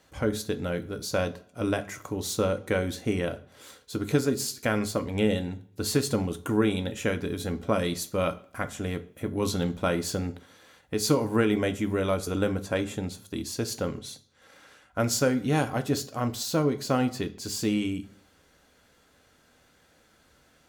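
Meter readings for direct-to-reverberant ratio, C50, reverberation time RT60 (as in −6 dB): 8.5 dB, 17.5 dB, 0.55 s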